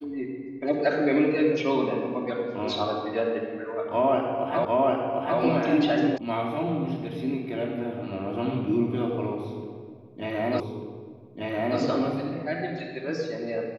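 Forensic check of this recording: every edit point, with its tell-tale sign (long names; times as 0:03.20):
0:04.65: the same again, the last 0.75 s
0:06.18: cut off before it has died away
0:10.60: the same again, the last 1.19 s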